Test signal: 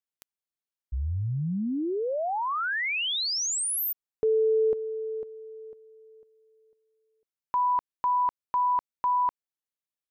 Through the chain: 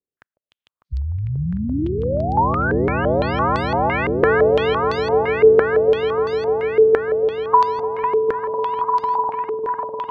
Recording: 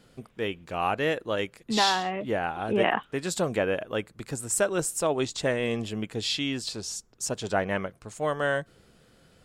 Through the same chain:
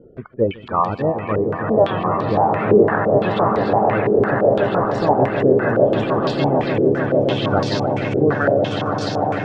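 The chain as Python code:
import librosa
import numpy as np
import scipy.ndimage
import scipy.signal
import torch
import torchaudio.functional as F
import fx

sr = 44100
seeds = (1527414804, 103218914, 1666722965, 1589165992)

p1 = fx.spec_quant(x, sr, step_db=30)
p2 = fx.dereverb_blind(p1, sr, rt60_s=1.0)
p3 = fx.env_lowpass_down(p2, sr, base_hz=860.0, full_db=-25.5)
p4 = fx.peak_eq(p3, sr, hz=110.0, db=3.5, octaves=1.5)
p5 = fx.rider(p4, sr, range_db=3, speed_s=0.5)
p6 = p4 + F.gain(torch.from_numpy(p5), 1.0).numpy()
p7 = fx.wow_flutter(p6, sr, seeds[0], rate_hz=2.1, depth_cents=15.0)
p8 = p7 + fx.echo_swell(p7, sr, ms=150, loudest=8, wet_db=-7.5, dry=0)
y = fx.filter_held_lowpass(p8, sr, hz=5.9, low_hz=420.0, high_hz=4500.0)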